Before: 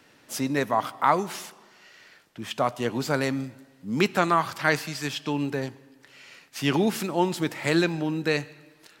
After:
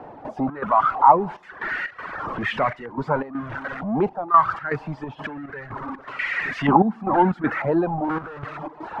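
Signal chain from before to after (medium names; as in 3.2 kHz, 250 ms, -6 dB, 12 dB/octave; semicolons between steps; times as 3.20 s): jump at every zero crossing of -20.5 dBFS; reverb removal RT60 1.8 s; 5.04–5.52 s: compressor with a negative ratio -30 dBFS, ratio -1; 6.68–7.50 s: small resonant body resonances 220/770 Hz, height 14 dB; 8.04–8.44 s: Schmitt trigger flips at -33.5 dBFS; trance gate "..xx.xxxxxx" 121 bpm -12 dB; step-sequenced low-pass 2.1 Hz 790–1900 Hz; trim -2 dB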